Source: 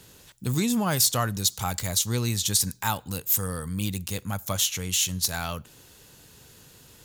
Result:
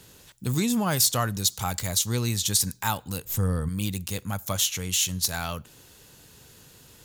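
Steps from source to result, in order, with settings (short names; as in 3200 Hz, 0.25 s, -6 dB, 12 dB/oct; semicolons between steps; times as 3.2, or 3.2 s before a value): 3.25–3.69 tilt -2.5 dB/oct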